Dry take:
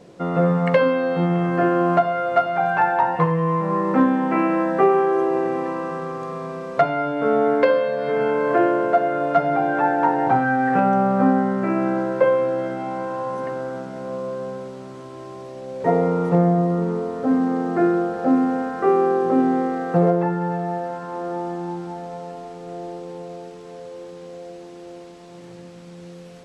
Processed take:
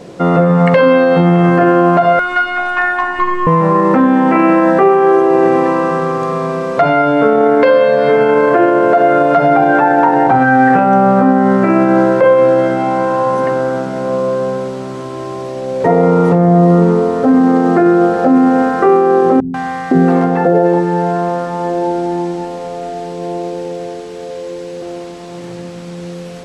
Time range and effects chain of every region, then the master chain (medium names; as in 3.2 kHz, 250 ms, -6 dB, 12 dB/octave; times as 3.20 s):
2.19–3.47 s: high-order bell 540 Hz -15.5 dB 1.3 oct + upward compressor, threshold -25 dBFS + robot voice 358 Hz
19.40–24.82 s: band-stop 1.3 kHz, Q 16 + three bands offset in time lows, highs, mids 140/510 ms, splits 180/860 Hz
whole clip: de-hum 49.53 Hz, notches 4; loudness maximiser +14 dB; trim -1 dB